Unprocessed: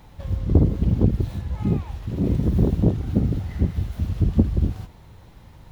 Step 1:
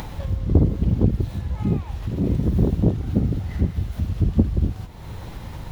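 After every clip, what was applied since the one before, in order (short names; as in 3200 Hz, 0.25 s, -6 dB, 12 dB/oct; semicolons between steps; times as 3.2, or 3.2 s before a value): upward compressor, threshold -21 dBFS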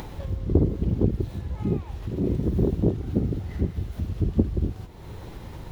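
bell 380 Hz +7 dB 0.74 oct; gain -5 dB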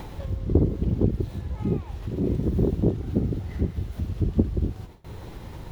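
gate with hold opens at -33 dBFS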